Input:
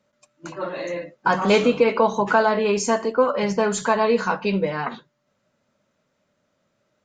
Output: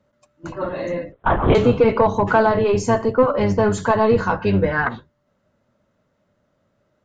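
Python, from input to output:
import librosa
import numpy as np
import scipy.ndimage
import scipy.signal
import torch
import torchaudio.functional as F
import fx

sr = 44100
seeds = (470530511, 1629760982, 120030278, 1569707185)

y = fx.octave_divider(x, sr, octaves=1, level_db=-3.0)
y = fx.high_shelf(y, sr, hz=2500.0, db=-10.5)
y = fx.notch(y, sr, hz=2400.0, q=17.0)
y = fx.peak_eq(y, sr, hz=1600.0, db=13.0, octaves=0.45, at=(4.4, 4.89))
y = 10.0 ** (-8.0 / 20.0) * np.tanh(y / 10.0 ** (-8.0 / 20.0))
y = fx.lpc_vocoder(y, sr, seeds[0], excitation='whisper', order=10, at=(1.12, 1.55))
y = F.gain(torch.from_numpy(y), 4.0).numpy()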